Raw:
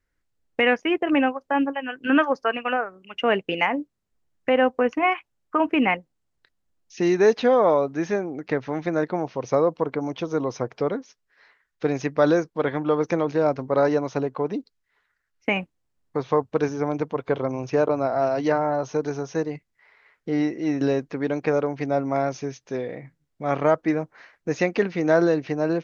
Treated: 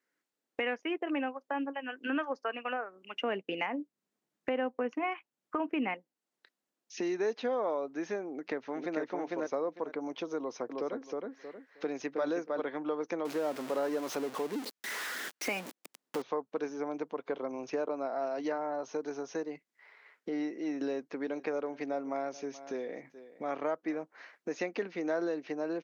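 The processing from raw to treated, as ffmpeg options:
-filter_complex "[0:a]asettb=1/sr,asplit=3[a][b][c];[a]atrim=end=3.214[d];[b]atrim=start=3.21:end=5.94,asetpts=PTS-STARTPTS,afade=t=in:d=0.004:c=qsin,afade=t=out:st=2.726:d=0.004:c=qsin,equalizer=f=120:w=0.76:g=10[e];[c]atrim=start=5.936[f];[d][e]acrossfade=d=0.004:c1=hsin:c2=qsin[g];[g][f]acrossfade=d=0.004:c1=qsin:c2=hsin,asplit=2[h][i];[i]afade=t=in:st=8.3:d=0.01,afade=t=out:st=9.01:d=0.01,aecho=0:1:450|900|1350:0.944061|0.188812|0.0377624[j];[h][j]amix=inputs=2:normalize=0,asettb=1/sr,asplit=3[k][l][m];[k]atrim=end=10.384[n];[l]atrim=start=10.38:end=12.6,asetpts=PTS-STARTPTS,afade=t=in:d=0.004:c=qsin,afade=t=out:st=2.216:d=0.004:c=qsin,asplit=2[o][p];[p]adelay=315,lowpass=f=2.4k:p=1,volume=-4dB,asplit=2[q][r];[r]adelay=315,lowpass=f=2.4k:p=1,volume=0.18,asplit=2[s][t];[t]adelay=315,lowpass=f=2.4k:p=1,volume=0.18[u];[o][q][s][u]amix=inputs=4:normalize=0,atrim=end_sample=97902[v];[m]atrim=start=12.596[w];[n][v]acrossfade=d=0.004:c1=hsin:c2=qsin[x];[x][w]acrossfade=d=0.004:c1=qsin:c2=hsin,asettb=1/sr,asplit=3[y][z][aa];[y]atrim=end=13.254[ab];[z]atrim=start=13.25:end=16.22,asetpts=PTS-STARTPTS,afade=t=in:d=0.004:c=qsin,afade=t=out:st=2.966:d=0.004:c=qsin,aeval=exprs='val(0)+0.5*0.0531*sgn(val(0))':c=same[ac];[aa]atrim=start=16.216[ad];[ab][ac]acrossfade=d=0.004:c1=hsin:c2=qsin[ae];[ae][ad]acrossfade=d=0.004:c1=qsin:c2=hsin,asettb=1/sr,asplit=3[af][ag][ah];[af]atrim=end=20.824[ai];[ag]atrim=start=20.82:end=24.02,asetpts=PTS-STARTPTS,afade=t=in:d=0.004:c=qsin,afade=t=out:st=3.196:d=0.004:c=qsin,aecho=1:1:428:0.0841,atrim=end_sample=141120[aj];[ah]atrim=start=24.016[ak];[ai][aj]acrossfade=d=0.004:c1=hsin:c2=qsin[al];[al][ak]acrossfade=d=0.004:c1=qsin:c2=hsin,highpass=f=230:w=0.5412,highpass=f=230:w=1.3066,acompressor=threshold=-38dB:ratio=2,volume=-1.5dB"

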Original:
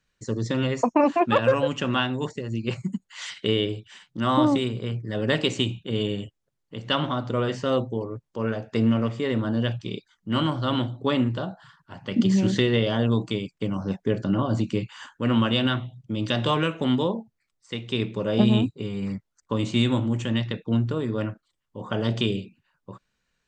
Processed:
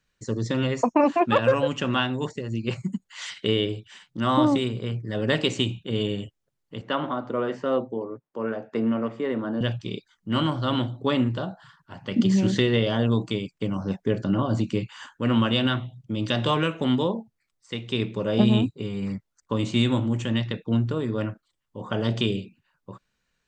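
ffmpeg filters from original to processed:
-filter_complex "[0:a]asettb=1/sr,asplit=3[a][b][c];[a]atrim=end=6.814[d];[b]atrim=start=6.81:end=9.61,asetpts=PTS-STARTPTS,afade=t=in:d=0.004:c=qsin,afade=t=out:st=2.796:d=0.004:c=qsin,acrossover=split=180 2100:gain=0.0891 1 0.224[e][f][g];[e][f][g]amix=inputs=3:normalize=0[h];[c]atrim=start=9.606[i];[d][h]acrossfade=d=0.004:c1=hsin:c2=qsin[j];[j][i]acrossfade=d=0.004:c1=qsin:c2=hsin"

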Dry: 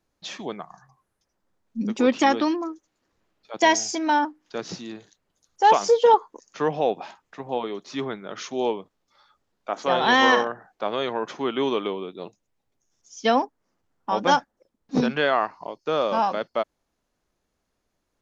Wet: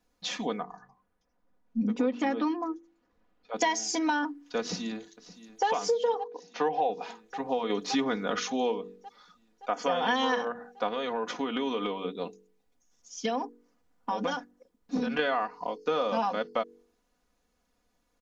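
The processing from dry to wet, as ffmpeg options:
-filter_complex "[0:a]asettb=1/sr,asplit=3[a][b][c];[a]atrim=end=0.604[d];[b]atrim=start=0.6:end=3.56,asetpts=PTS-STARTPTS,afade=t=in:d=0.004:c=qsin,afade=t=out:st=2.956:d=0.004:c=qsin,lowpass=f=1.7k:p=1[e];[c]atrim=start=3.556[f];[d][e]acrossfade=d=0.004:c1=hsin:c2=qsin[g];[g][f]acrossfade=d=0.004:c1=qsin:c2=hsin,asplit=2[h][i];[i]afade=t=in:st=4.6:d=0.01,afade=t=out:st=5.66:d=0.01,aecho=0:1:570|1140|1710|2280|2850|3420|3990|4560|5130|5700:0.149624|0.112218|0.0841633|0.0631224|0.0473418|0.0355064|0.0266298|0.0199723|0.0149793|0.0112344[j];[h][j]amix=inputs=2:normalize=0,asettb=1/sr,asplit=3[k][l][m];[k]atrim=end=6.164[n];[l]atrim=start=6.16:end=6.9,asetpts=PTS-STARTPTS,afade=t=in:d=0.004:c=qsin,afade=t=out:st=0.736:d=0.004:c=qsin,highpass=170,equalizer=f=220:t=q:w=4:g=-8,equalizer=f=790:t=q:w=4:g=8,equalizer=f=1.3k:t=q:w=4:g=-6,lowpass=f=5.7k:w=0.5412,lowpass=f=5.7k:w=1.3066[o];[m]atrim=start=6.896[p];[n][o]acrossfade=d=0.004:c1=hsin:c2=qsin[q];[q][p]acrossfade=d=0.004:c1=qsin:c2=hsin,asplit=3[r][s][t];[r]afade=t=out:st=7.69:d=0.02[u];[s]acontrast=85,afade=t=in:st=7.69:d=0.02,afade=t=out:st=8.38:d=0.02[v];[t]afade=t=in:st=8.38:d=0.02[w];[u][v][w]amix=inputs=3:normalize=0,asettb=1/sr,asplit=3[x][y][z];[x]atrim=end=9.704[aa];[y]atrim=start=9.7:end=10.16,asetpts=PTS-STARTPTS,afade=t=in:d=0.004:c=qsin,afade=t=out:st=0.456:d=0.004:c=qsin,asuperstop=centerf=3900:order=8:qfactor=7[ab];[z]atrim=start=10.156[ac];[aa][ab]acrossfade=d=0.004:c1=hsin:c2=qsin[ad];[ad][ac]acrossfade=d=0.004:c1=qsin:c2=hsin,asettb=1/sr,asplit=3[ae][af][ag];[ae]atrim=end=10.884[ah];[af]atrim=start=10.88:end=15.19,asetpts=PTS-STARTPTS,afade=t=in:d=0.004:c=qsin,afade=t=out:st=4.306:d=0.004:c=qsin,acompressor=threshold=-27dB:ratio=6:attack=3.2:release=140:knee=1:detection=peak[ai];[ag]atrim=start=15.186[aj];[ah][ai]acrossfade=d=0.004:c1=hsin:c2=qsin[ak];[ak][aj]acrossfade=d=0.004:c1=qsin:c2=hsin,aecho=1:1:4.1:0.73,bandreject=f=47.81:t=h:w=4,bandreject=f=95.62:t=h:w=4,bandreject=f=143.43:t=h:w=4,bandreject=f=191.24:t=h:w=4,bandreject=f=239.05:t=h:w=4,bandreject=f=286.86:t=h:w=4,bandreject=f=334.67:t=h:w=4,bandreject=f=382.48:t=h:w=4,bandreject=f=430.29:t=h:w=4,bandreject=f=478.1:t=h:w=4,acompressor=threshold=-25dB:ratio=5"

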